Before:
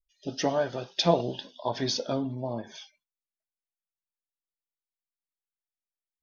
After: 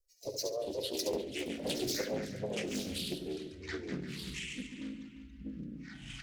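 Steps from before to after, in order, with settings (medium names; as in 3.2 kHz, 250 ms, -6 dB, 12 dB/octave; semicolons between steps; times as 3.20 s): median filter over 5 samples; hum notches 60/120/180/240/300 Hz; reverb removal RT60 1.2 s; FFT filter 120 Hz 0 dB, 210 Hz -25 dB, 370 Hz -9 dB, 530 Hz +15 dB, 770 Hz -29 dB, 1.6 kHz -26 dB, 2.5 kHz -3 dB, 3.7 kHz -24 dB, 5.4 kHz +13 dB; compression 5:1, threshold -35 dBFS, peak gain reduction 19.5 dB; harmony voices -4 st -4 dB, +3 st -11 dB; feedback delay 70 ms, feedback 28%, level -6.5 dB; ever faster or slower copies 295 ms, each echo -6 st, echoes 3; filtered feedback delay 347 ms, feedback 40%, low-pass 3.5 kHz, level -11.5 dB; loudspeaker Doppler distortion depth 0.4 ms; trim -2.5 dB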